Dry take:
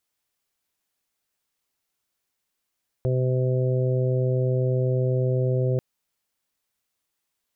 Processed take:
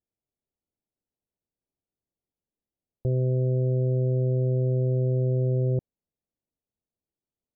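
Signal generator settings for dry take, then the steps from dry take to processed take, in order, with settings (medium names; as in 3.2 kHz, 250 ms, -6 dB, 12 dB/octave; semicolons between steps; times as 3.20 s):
steady additive tone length 2.74 s, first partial 128 Hz, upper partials -17/-7/-7/-15.5 dB, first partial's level -21 dB
Gaussian low-pass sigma 14 samples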